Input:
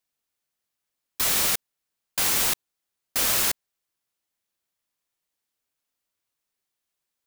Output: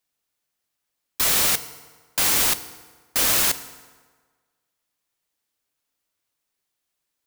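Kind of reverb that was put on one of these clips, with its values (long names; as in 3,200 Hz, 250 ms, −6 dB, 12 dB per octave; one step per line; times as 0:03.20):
feedback delay network reverb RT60 1.5 s, low-frequency decay 0.9×, high-frequency decay 0.7×, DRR 12 dB
level +3 dB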